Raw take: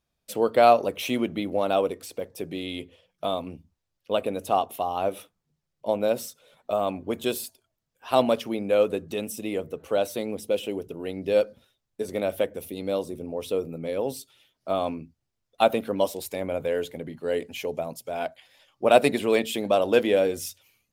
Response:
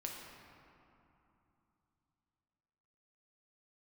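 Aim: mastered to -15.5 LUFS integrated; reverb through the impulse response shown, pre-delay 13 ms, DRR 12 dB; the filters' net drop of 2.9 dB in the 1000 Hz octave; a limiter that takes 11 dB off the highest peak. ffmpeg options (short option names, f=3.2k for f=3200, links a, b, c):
-filter_complex "[0:a]equalizer=f=1k:t=o:g=-5,alimiter=limit=-17dB:level=0:latency=1,asplit=2[a][b];[1:a]atrim=start_sample=2205,adelay=13[c];[b][c]afir=irnorm=-1:irlink=0,volume=-11dB[d];[a][d]amix=inputs=2:normalize=0,volume=15dB"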